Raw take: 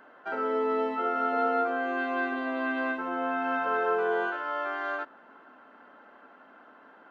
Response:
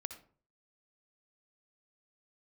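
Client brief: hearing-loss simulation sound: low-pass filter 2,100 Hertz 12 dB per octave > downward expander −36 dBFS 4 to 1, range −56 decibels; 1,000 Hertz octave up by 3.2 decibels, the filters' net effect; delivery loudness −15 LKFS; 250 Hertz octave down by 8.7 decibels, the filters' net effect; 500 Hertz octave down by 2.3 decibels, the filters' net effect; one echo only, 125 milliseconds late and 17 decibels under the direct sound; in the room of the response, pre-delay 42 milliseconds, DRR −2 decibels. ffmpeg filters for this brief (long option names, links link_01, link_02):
-filter_complex "[0:a]equalizer=frequency=250:width_type=o:gain=-9,equalizer=frequency=500:width_type=o:gain=-3.5,equalizer=frequency=1000:width_type=o:gain=7,aecho=1:1:125:0.141,asplit=2[link_01][link_02];[1:a]atrim=start_sample=2205,adelay=42[link_03];[link_02][link_03]afir=irnorm=-1:irlink=0,volume=4.5dB[link_04];[link_01][link_04]amix=inputs=2:normalize=0,lowpass=2100,agate=range=-56dB:threshold=-36dB:ratio=4,volume=9dB"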